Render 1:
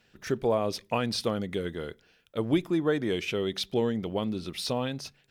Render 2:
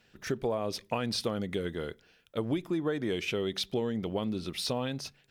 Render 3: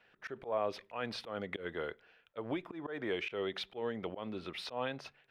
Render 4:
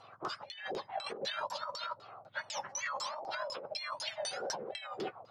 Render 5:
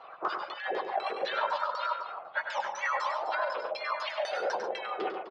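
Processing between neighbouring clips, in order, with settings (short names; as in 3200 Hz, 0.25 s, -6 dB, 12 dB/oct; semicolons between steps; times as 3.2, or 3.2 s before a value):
compressor 5:1, threshold -27 dBFS, peak gain reduction 8 dB
three-band isolator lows -14 dB, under 460 Hz, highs -22 dB, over 2900 Hz; auto swell 0.126 s; gain +2.5 dB
spectrum mirrored in octaves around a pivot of 1400 Hz; LFO low-pass saw down 4 Hz 480–6300 Hz; negative-ratio compressor -47 dBFS, ratio -1; gain +7 dB
BPF 450–2200 Hz; on a send: loudspeakers at several distances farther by 34 m -7 dB, 48 m -12 dB, 88 m -12 dB; on the sum: gain +8.5 dB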